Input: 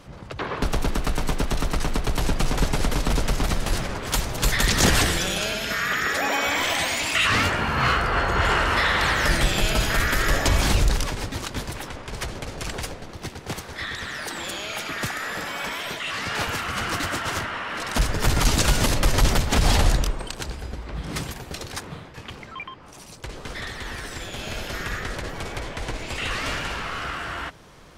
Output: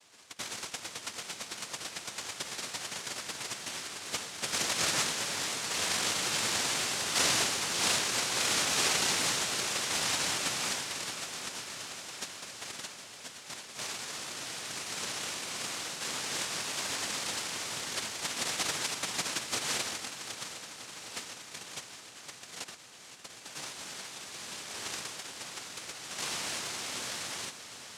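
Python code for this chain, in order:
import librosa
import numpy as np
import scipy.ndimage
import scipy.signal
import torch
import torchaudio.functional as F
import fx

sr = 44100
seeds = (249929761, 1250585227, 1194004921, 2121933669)

y = scipy.signal.sosfilt(scipy.signal.butter(2, 1100.0, 'highpass', fs=sr, output='sos'), x)
y = fx.high_shelf(y, sr, hz=6200.0, db=-9.5)
y = fx.vibrato(y, sr, rate_hz=1.5, depth_cents=55.0)
y = fx.noise_vocoder(y, sr, seeds[0], bands=1)
y = fx.echo_heads(y, sr, ms=254, heads='second and third', feedback_pct=69, wet_db=-14)
y = y * librosa.db_to_amplitude(-5.0)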